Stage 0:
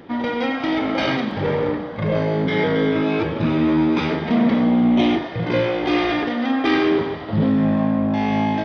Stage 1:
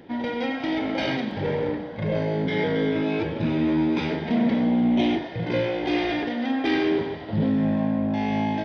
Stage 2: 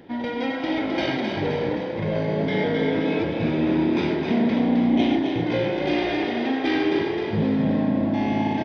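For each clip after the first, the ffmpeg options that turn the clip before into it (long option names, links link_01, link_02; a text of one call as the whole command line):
ffmpeg -i in.wav -af "equalizer=frequency=1200:width=6.2:gain=-14,volume=-4.5dB" out.wav
ffmpeg -i in.wav -filter_complex "[0:a]asplit=8[link_01][link_02][link_03][link_04][link_05][link_06][link_07][link_08];[link_02]adelay=262,afreqshift=33,volume=-5.5dB[link_09];[link_03]adelay=524,afreqshift=66,volume=-10.9dB[link_10];[link_04]adelay=786,afreqshift=99,volume=-16.2dB[link_11];[link_05]adelay=1048,afreqshift=132,volume=-21.6dB[link_12];[link_06]adelay=1310,afreqshift=165,volume=-26.9dB[link_13];[link_07]adelay=1572,afreqshift=198,volume=-32.3dB[link_14];[link_08]adelay=1834,afreqshift=231,volume=-37.6dB[link_15];[link_01][link_09][link_10][link_11][link_12][link_13][link_14][link_15]amix=inputs=8:normalize=0" out.wav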